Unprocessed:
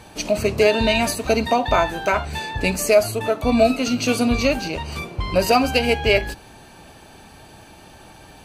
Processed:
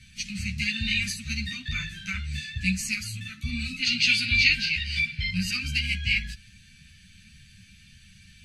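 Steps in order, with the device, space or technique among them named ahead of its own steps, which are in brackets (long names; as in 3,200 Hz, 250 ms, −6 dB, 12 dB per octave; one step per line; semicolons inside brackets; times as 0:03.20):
elliptic band-stop filter 180–2,000 Hz, stop band 50 dB
string-machine ensemble chorus (string-ensemble chorus; low-pass filter 7,600 Hz 12 dB per octave)
gain on a spectral selection 0:03.82–0:05.30, 1,400–5,400 Hz +10 dB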